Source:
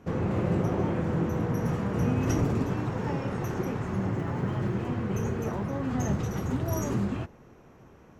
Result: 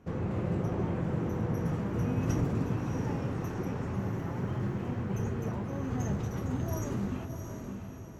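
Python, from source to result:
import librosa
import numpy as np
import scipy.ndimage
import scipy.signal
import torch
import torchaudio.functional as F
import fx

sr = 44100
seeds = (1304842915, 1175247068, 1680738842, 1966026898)

y = fx.low_shelf(x, sr, hz=140.0, db=4.5)
y = fx.echo_diffused(y, sr, ms=664, feedback_pct=44, wet_db=-6.5)
y = F.gain(torch.from_numpy(y), -6.5).numpy()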